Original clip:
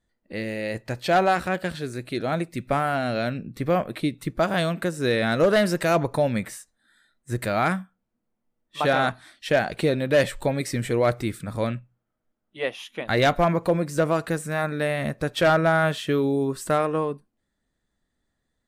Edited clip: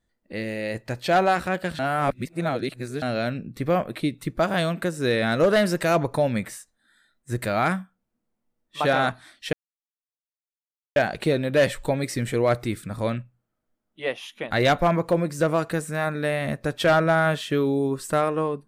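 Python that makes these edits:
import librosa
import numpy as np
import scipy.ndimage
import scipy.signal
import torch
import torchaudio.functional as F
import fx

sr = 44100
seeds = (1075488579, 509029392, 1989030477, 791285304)

y = fx.edit(x, sr, fx.reverse_span(start_s=1.79, length_s=1.23),
    fx.insert_silence(at_s=9.53, length_s=1.43), tone=tone)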